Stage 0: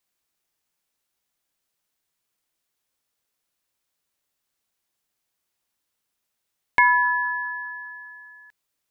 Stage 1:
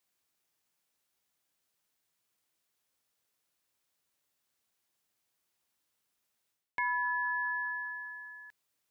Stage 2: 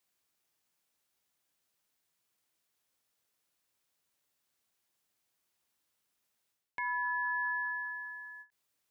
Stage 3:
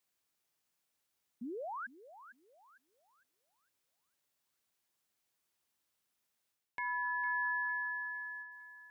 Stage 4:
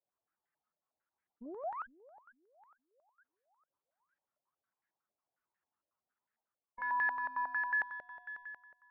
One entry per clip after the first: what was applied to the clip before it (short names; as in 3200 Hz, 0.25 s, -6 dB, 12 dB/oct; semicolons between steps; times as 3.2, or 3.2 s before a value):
HPF 59 Hz; reverse; compressor 6:1, threshold -29 dBFS, peak gain reduction 16 dB; reverse; gain -1.5 dB
limiter -27.5 dBFS, peak gain reduction 4.5 dB; ending taper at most 300 dB/s
painted sound rise, 1.41–1.87, 220–1700 Hz -39 dBFS; on a send: thinning echo 0.455 s, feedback 38%, high-pass 380 Hz, level -13 dB; on the sum: gain -2.5 dB
spectral contrast raised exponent 1.6; added harmonics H 3 -19 dB, 8 -29 dB, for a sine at -28.5 dBFS; stepped low-pass 11 Hz 620–1700 Hz; gain -3 dB